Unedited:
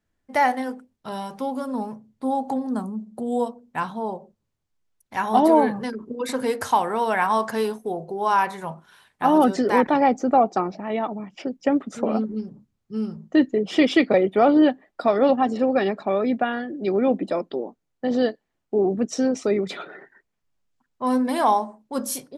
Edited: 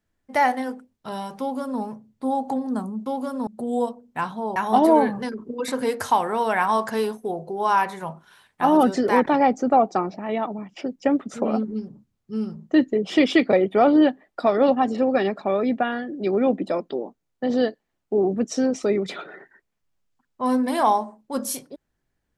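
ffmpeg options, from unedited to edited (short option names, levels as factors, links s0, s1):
-filter_complex "[0:a]asplit=4[s0][s1][s2][s3];[s0]atrim=end=3.062[s4];[s1]atrim=start=1.398:end=1.812[s5];[s2]atrim=start=3.058:end=4.152[s6];[s3]atrim=start=5.168[s7];[s4][s5]acrossfade=d=0.004:c1=hsin:c2=hsin[s8];[s8][s6]acrossfade=d=0.004:c1=hsin:c2=hsin[s9];[s9][s7]acrossfade=d=0.004:c1=hsin:c2=hsin"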